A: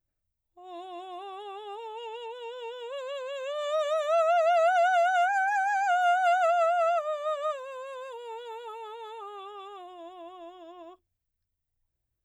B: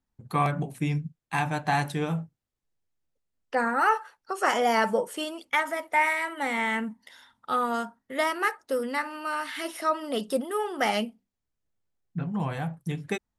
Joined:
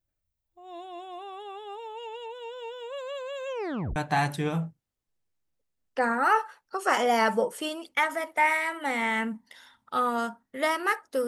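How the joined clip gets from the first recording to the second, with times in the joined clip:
A
3.47 s: tape stop 0.49 s
3.96 s: go over to B from 1.52 s

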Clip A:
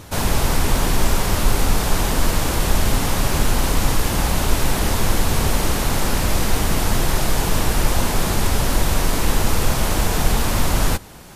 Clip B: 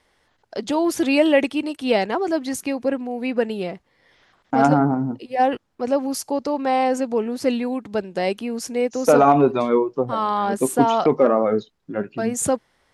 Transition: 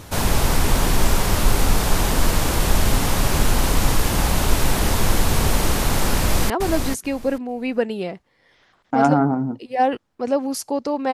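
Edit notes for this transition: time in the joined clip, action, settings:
clip A
6.16–6.50 s: echo throw 440 ms, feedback 15%, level -5.5 dB
6.50 s: go over to clip B from 2.10 s

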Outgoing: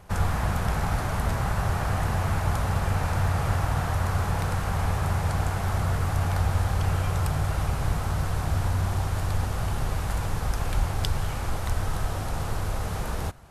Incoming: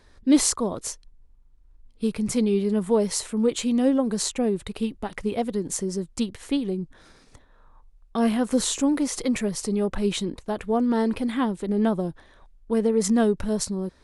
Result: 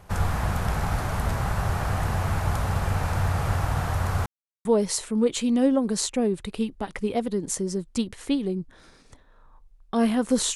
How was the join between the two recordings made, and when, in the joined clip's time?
outgoing
4.26–4.65 s: mute
4.65 s: go over to incoming from 2.87 s

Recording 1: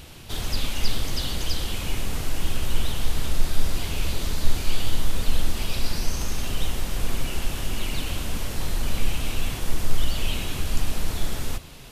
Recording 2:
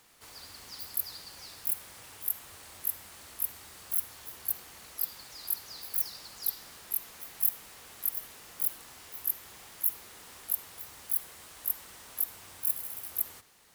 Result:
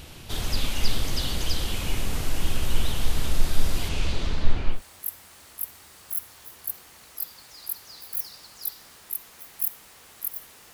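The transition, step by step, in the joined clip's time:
recording 1
3.88–4.82 s: low-pass 8.9 kHz -> 1.6 kHz
4.75 s: go over to recording 2 from 2.56 s, crossfade 0.14 s

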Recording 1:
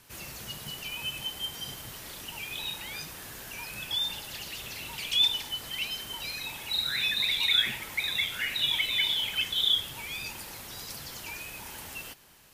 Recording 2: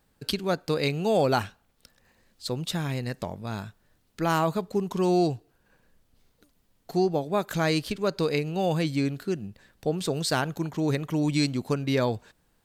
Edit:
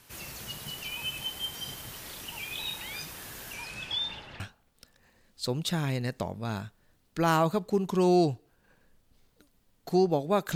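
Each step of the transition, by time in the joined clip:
recording 1
3.53–4.40 s: low-pass 12 kHz -> 1.7 kHz
4.40 s: go over to recording 2 from 1.42 s

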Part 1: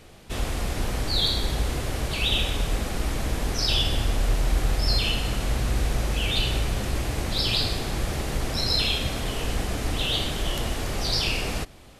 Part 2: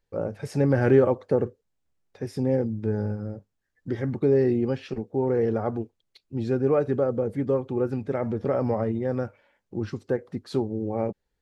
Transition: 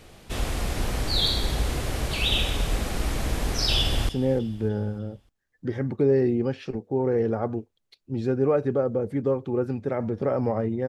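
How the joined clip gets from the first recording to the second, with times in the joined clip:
part 1
3.79–4.09 s: echo throw 300 ms, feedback 45%, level -17 dB
4.09 s: go over to part 2 from 2.32 s

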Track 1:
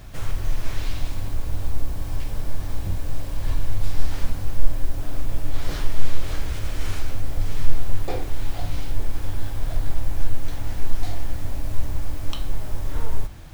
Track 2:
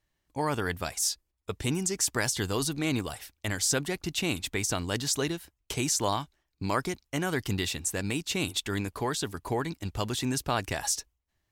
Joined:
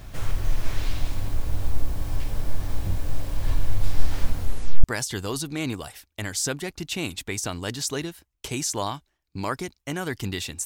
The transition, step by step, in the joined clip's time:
track 1
4.37 s: tape stop 0.47 s
4.84 s: go over to track 2 from 2.10 s

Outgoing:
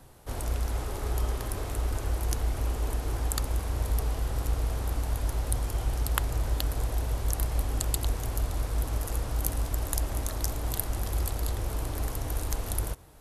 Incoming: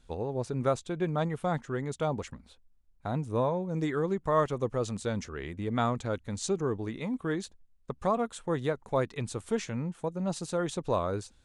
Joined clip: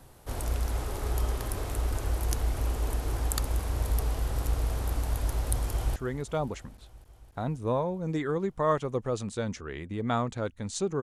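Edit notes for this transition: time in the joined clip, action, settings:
outgoing
5.70–5.96 s: echo throw 270 ms, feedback 80%, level -16.5 dB
5.96 s: go over to incoming from 1.64 s

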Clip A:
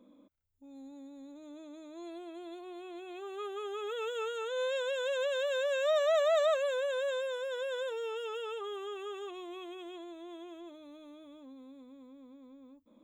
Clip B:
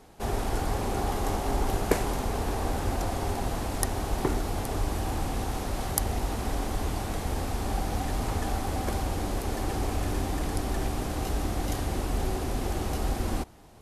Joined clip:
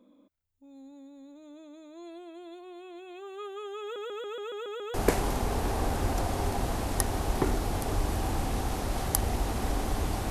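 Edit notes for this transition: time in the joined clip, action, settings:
clip A
3.82 s: stutter in place 0.14 s, 8 plays
4.94 s: go over to clip B from 1.77 s

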